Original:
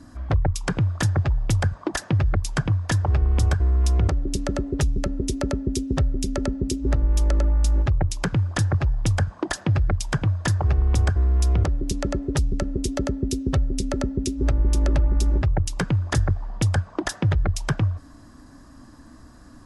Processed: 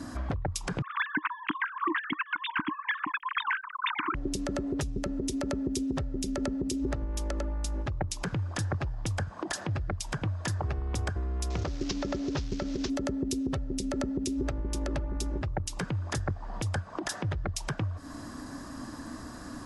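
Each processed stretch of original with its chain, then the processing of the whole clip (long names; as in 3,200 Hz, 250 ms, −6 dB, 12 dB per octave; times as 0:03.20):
0:00.82–0:04.15: three sine waves on the formant tracks + Chebyshev band-stop filter 310–1,000 Hz, order 4 + dynamic equaliser 810 Hz, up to +5 dB, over −31 dBFS, Q 0.71
0:11.50–0:12.90: variable-slope delta modulation 32 kbit/s + bass and treble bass −1 dB, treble +5 dB + one half of a high-frequency compander encoder only
whole clip: downward compressor 6 to 1, threshold −31 dBFS; low-shelf EQ 97 Hz −12 dB; brickwall limiter −29 dBFS; level +8.5 dB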